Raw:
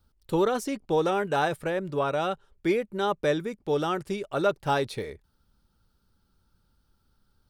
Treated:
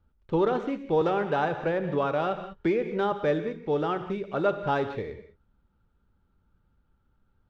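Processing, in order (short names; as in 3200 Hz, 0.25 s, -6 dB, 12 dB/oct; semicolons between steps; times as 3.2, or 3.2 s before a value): median filter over 9 samples; air absorption 200 m; non-linear reverb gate 0.22 s flat, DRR 9 dB; 1.01–3.12 three-band squash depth 70%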